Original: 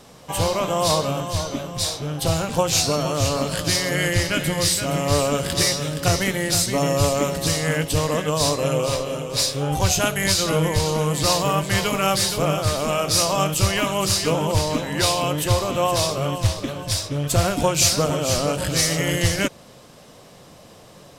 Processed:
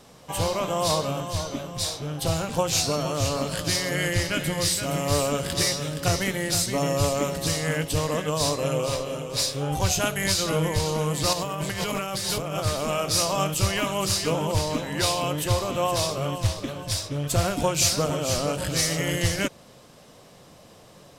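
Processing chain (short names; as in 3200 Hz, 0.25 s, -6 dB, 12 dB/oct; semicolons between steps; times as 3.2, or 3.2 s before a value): 4.83–5.32 high shelf 8800 Hz +5.5 dB; 11.33–12.6 negative-ratio compressor -25 dBFS, ratio -1; gain -4 dB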